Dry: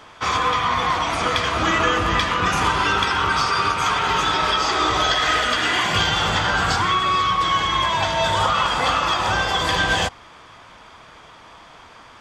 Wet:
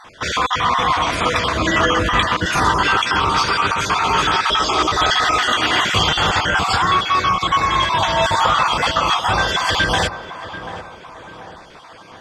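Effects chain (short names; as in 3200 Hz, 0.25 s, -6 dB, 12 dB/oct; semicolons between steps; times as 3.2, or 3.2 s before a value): random spectral dropouts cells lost 30%; tape echo 0.737 s, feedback 59%, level -9.5 dB, low-pass 1200 Hz; gain +4 dB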